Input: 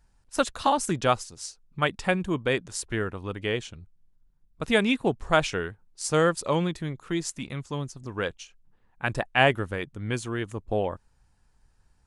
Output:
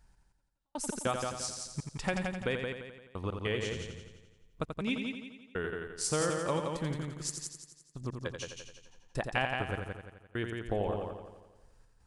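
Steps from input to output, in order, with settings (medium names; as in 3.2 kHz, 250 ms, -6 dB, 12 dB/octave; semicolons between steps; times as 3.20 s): compression 4:1, threshold -30 dBFS, peak gain reduction 13.5 dB; trance gate "x....x.xxx.x.xx." 100 bpm -60 dB; on a send: multi-head delay 86 ms, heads first and second, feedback 46%, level -6.5 dB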